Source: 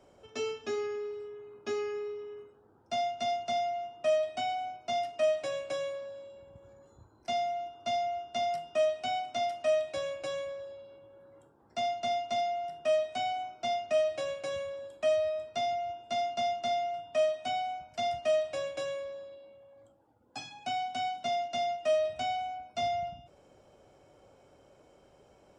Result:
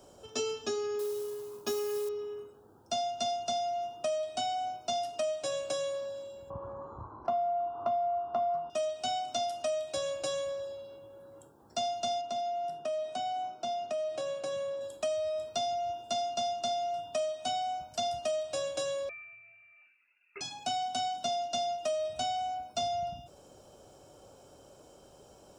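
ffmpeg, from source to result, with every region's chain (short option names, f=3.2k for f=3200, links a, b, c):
-filter_complex "[0:a]asettb=1/sr,asplit=3[a][b][c];[a]atrim=end=0.994[d];[b]atrim=start=0.99:end=2.09,asetpts=PTS-STARTPTS,afade=t=in:d=0.004:c=qsin,afade=t=out:st=1.096:d=0.004:c=qsin,equalizer=f=1k:w=7.1:g=7,acrusher=bits=5:mode=log:mix=0:aa=0.000001,asplit=2[e][f];[f]adelay=22,volume=-11.5dB[g];[e][g]amix=inputs=2:normalize=0,atrim=end_sample=48510[h];[c]atrim=start=2.086[i];[d][h]acrossfade=d=0.004:c1=hsin:c2=qsin[j];[j][i]acrossfade=d=0.004:c1=qsin:c2=hsin,asettb=1/sr,asplit=3[k][l][m];[k]atrim=end=6.504[n];[l]atrim=start=6.5:end=8.7,asetpts=PTS-STARTPTS,afade=t=in:d=0.004:c=qsin,afade=t=out:st=2.196:d=0.004:c=qsin,lowpass=f=1.1k:t=q:w=5.8,acontrast=65[o];[m]atrim=start=8.696[p];[n][o]acrossfade=d=0.004:c1=hsin:c2=qsin[q];[q][p]acrossfade=d=0.004:c1=qsin:c2=hsin,asettb=1/sr,asplit=3[r][s][t];[r]atrim=end=12.214[u];[s]atrim=start=12.21:end=14.81,asetpts=PTS-STARTPTS,afade=t=in:d=0.004:c=qsin,afade=t=out:st=2.596:d=0.004:c=qsin,highshelf=f=3.1k:g=-9,acompressor=threshold=-35dB:ratio=3:attack=3.2:release=140:knee=1:detection=peak,highpass=f=120:w=0.5412,highpass=f=120:w=1.3066[v];[t]atrim=start=14.806[w];[u][v]acrossfade=d=0.004:c1=hsin:c2=qsin[x];[x][w]acrossfade=d=0.004:c1=qsin:c2=hsin,asettb=1/sr,asplit=3[y][z][aa];[y]atrim=end=19.094[ab];[z]atrim=start=19.09:end=20.41,asetpts=PTS-STARTPTS,afade=t=in:d=0.004:c=qsin,afade=t=out:st=1.316:d=0.004:c=qsin,highpass=f=360:p=1,lowpass=f=2.5k:t=q:w=0.5098,lowpass=f=2.5k:t=q:w=0.6013,lowpass=f=2.5k:t=q:w=0.9,lowpass=f=2.5k:t=q:w=2.563,afreqshift=-2900[ac];[aa]atrim=start=20.406[ad];[ab][ac]acrossfade=d=0.004:c1=hsin:c2=qsin[ae];[ae][ad]acrossfade=d=0.004:c1=qsin:c2=hsin,equalizer=f=2.1k:w=3.1:g=-13.5,acompressor=threshold=-35dB:ratio=5,highshelf=f=4.4k:g=12,volume=4dB"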